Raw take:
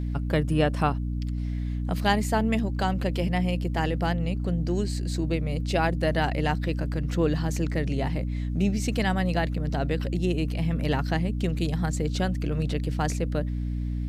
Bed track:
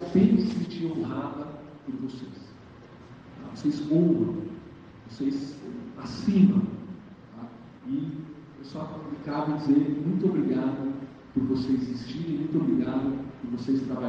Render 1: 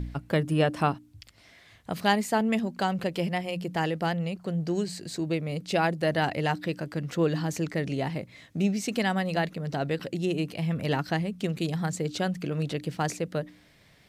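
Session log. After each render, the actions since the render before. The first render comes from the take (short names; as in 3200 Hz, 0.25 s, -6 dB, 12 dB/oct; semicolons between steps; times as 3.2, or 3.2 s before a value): de-hum 60 Hz, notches 5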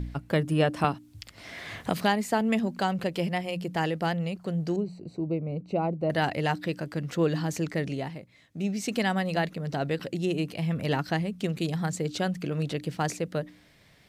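0.84–2.79 three-band squash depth 70%; 4.76–6.1 running mean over 26 samples; 7.82–8.88 dip -9 dB, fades 0.38 s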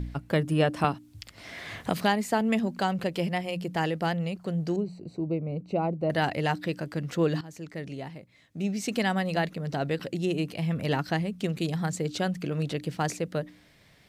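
7.41–8.59 fade in, from -17 dB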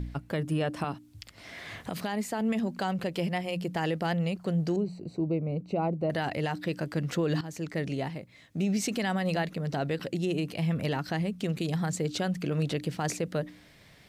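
vocal rider 2 s; limiter -20.5 dBFS, peak gain reduction 10.5 dB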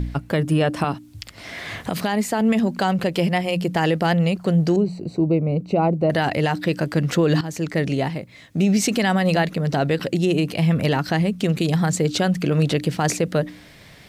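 gain +10 dB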